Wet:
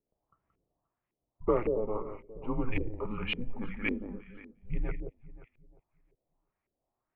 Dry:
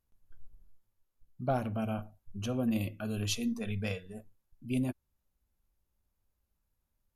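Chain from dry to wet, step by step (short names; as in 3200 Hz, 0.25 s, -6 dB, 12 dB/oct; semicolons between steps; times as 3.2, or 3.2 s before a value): bell 1700 Hz -6.5 dB 0.29 oct; mistuned SSB -230 Hz 230–3400 Hz; echo with dull and thin repeats by turns 0.176 s, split 2000 Hz, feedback 54%, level -7 dB; LFO low-pass saw up 1.8 Hz 400–2300 Hz; 1.65–2.38 air absorption 400 m; gain +4 dB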